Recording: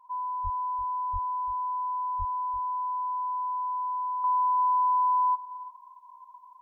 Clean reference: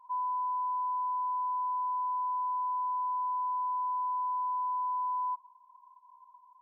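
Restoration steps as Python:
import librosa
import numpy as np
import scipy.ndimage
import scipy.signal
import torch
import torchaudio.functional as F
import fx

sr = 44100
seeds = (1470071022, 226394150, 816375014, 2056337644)

y = fx.fix_deplosive(x, sr, at_s=(0.43, 1.12, 2.18))
y = fx.fix_echo_inverse(y, sr, delay_ms=341, level_db=-15.0)
y = fx.gain(y, sr, db=fx.steps((0.0, 0.0), (4.24, -7.0)))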